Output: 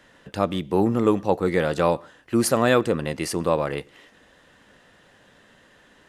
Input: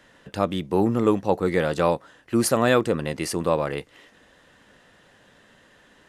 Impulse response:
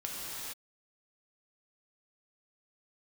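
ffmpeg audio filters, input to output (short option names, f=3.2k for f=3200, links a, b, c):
-filter_complex "[0:a]asplit=2[a][b];[1:a]atrim=start_sample=2205,afade=t=out:st=0.2:d=0.01,atrim=end_sample=9261,lowpass=5.8k[c];[b][c]afir=irnorm=-1:irlink=0,volume=-21.5dB[d];[a][d]amix=inputs=2:normalize=0"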